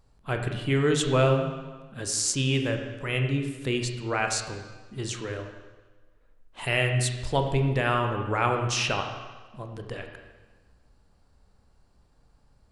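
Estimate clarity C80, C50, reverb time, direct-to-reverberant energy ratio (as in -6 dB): 7.5 dB, 6.0 dB, 1.3 s, 4.0 dB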